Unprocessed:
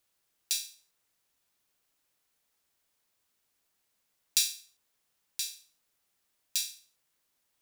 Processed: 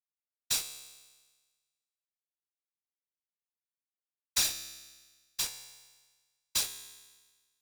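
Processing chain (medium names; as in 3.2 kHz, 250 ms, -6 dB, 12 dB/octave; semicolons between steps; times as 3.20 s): fuzz box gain 33 dB, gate -35 dBFS; whisper effect; feedback comb 68 Hz, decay 1.4 s, harmonics all, mix 70%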